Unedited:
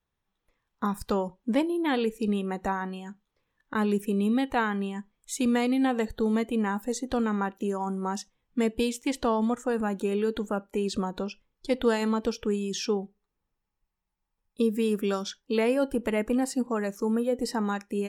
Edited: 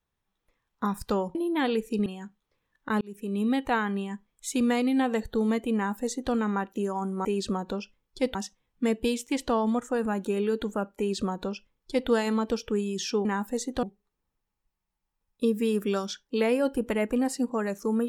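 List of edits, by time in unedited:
1.35–1.64 s: delete
2.35–2.91 s: delete
3.86–4.37 s: fade in
6.60–7.18 s: copy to 13.00 s
10.73–11.83 s: copy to 8.10 s

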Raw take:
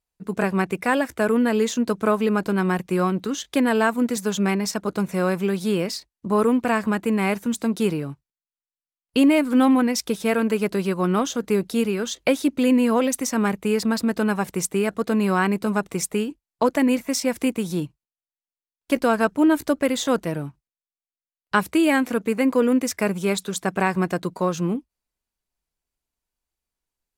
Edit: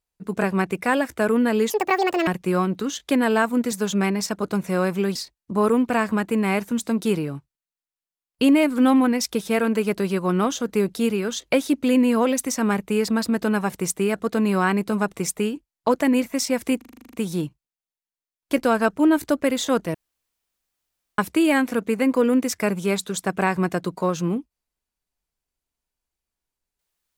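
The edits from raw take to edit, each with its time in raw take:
1.70–2.72 s: speed 178%
5.60–5.90 s: delete
17.52 s: stutter 0.04 s, 10 plays
20.33–21.57 s: room tone

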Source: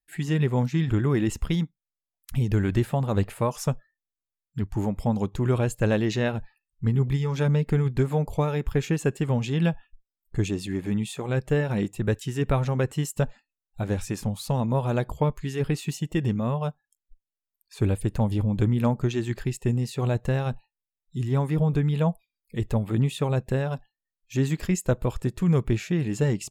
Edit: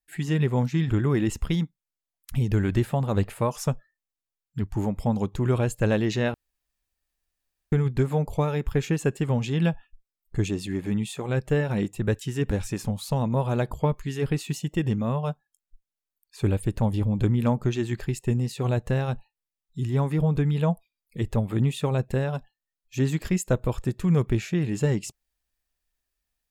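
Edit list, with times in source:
6.34–7.72 s: room tone
12.51–13.89 s: delete

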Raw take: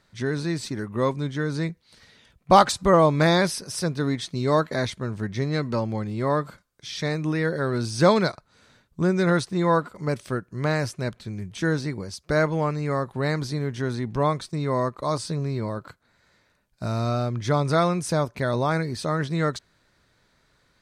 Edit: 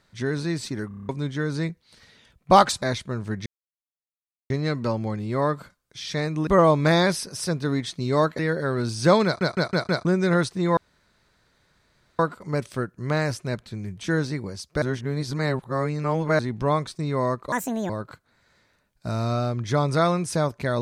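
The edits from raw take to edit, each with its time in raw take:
0.88 s: stutter in place 0.03 s, 7 plays
2.82–4.74 s: move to 7.35 s
5.38 s: insert silence 1.04 s
8.21 s: stutter in place 0.16 s, 5 plays
9.73 s: insert room tone 1.42 s
12.36–13.93 s: reverse
15.06–15.66 s: speed 160%

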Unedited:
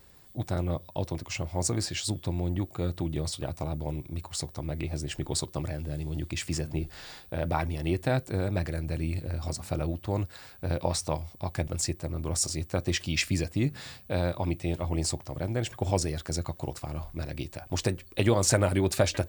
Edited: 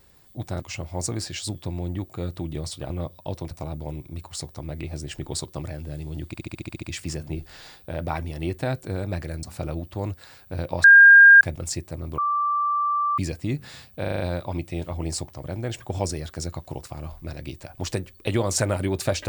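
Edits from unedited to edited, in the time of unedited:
0.60–1.21 s: move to 3.51 s
6.27 s: stutter 0.07 s, 9 plays
8.87–9.55 s: delete
10.96–11.53 s: bleep 1.61 kHz -6.5 dBFS
12.30–13.30 s: bleep 1.17 kHz -20 dBFS
14.12 s: stutter 0.04 s, 6 plays

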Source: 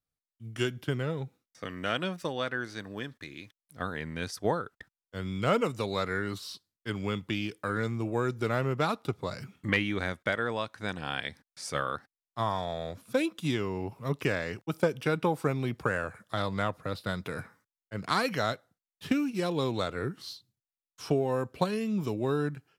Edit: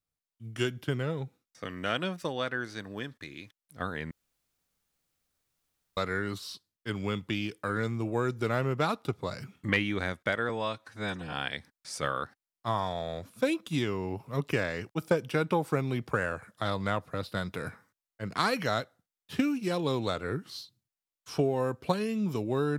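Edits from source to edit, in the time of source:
4.11–5.97 s: room tone
10.49–11.05 s: stretch 1.5×

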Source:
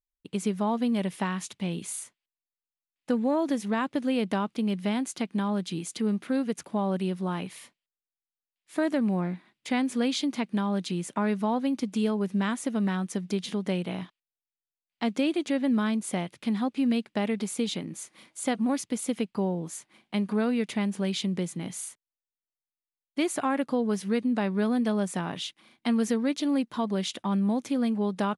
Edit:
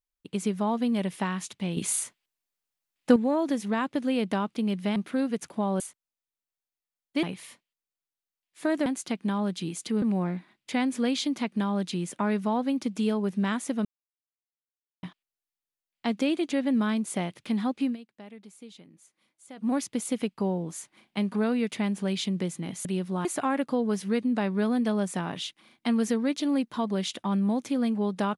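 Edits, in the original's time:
1.77–3.16 s: gain +7.5 dB
4.96–6.12 s: move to 8.99 s
6.96–7.36 s: swap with 21.82–23.25 s
12.82–14.00 s: mute
16.81–18.66 s: dip -18 dB, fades 0.13 s

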